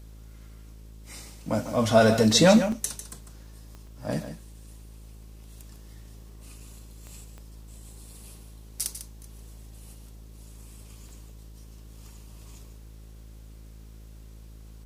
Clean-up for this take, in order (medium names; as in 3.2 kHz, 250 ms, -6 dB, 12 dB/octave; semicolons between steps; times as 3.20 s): de-click; de-hum 54 Hz, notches 11; interpolate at 2.72/3.87/6.60/8.80/11.09 s, 3.2 ms; inverse comb 149 ms -10.5 dB